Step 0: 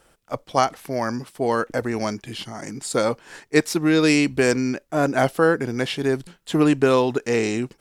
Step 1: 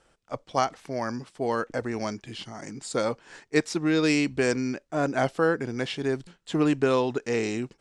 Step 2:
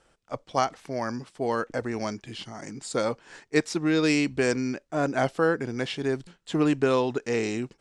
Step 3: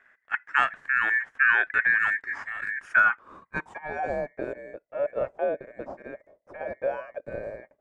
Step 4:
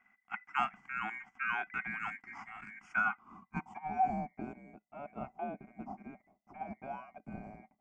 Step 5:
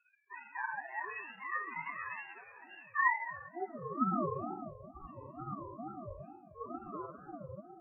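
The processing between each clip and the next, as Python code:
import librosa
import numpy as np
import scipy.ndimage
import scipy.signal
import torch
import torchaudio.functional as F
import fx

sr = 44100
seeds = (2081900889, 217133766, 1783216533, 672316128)

y1 = scipy.signal.sosfilt(scipy.signal.butter(4, 8400.0, 'lowpass', fs=sr, output='sos'), x)
y1 = y1 * librosa.db_to_amplitude(-5.5)
y2 = y1
y3 = y2 * np.sin(2.0 * np.pi * 2000.0 * np.arange(len(y2)) / sr)
y3 = fx.high_shelf_res(y3, sr, hz=5700.0, db=12.5, q=1.5)
y3 = fx.filter_sweep_lowpass(y3, sr, from_hz=1700.0, to_hz=590.0, start_s=2.68, end_s=4.44, q=7.5)
y4 = fx.fixed_phaser(y3, sr, hz=2600.0, stages=8)
y4 = fx.small_body(y4, sr, hz=(210.0, 750.0, 2000.0), ring_ms=50, db=16)
y4 = y4 * librosa.db_to_amplitude(-8.0)
y5 = fx.spec_topn(y4, sr, count=2)
y5 = fx.room_shoebox(y5, sr, seeds[0], volume_m3=1300.0, walls='mixed', distance_m=2.4)
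y5 = fx.ring_lfo(y5, sr, carrier_hz=440.0, swing_pct=30, hz=2.2)
y5 = y5 * librosa.db_to_amplitude(1.5)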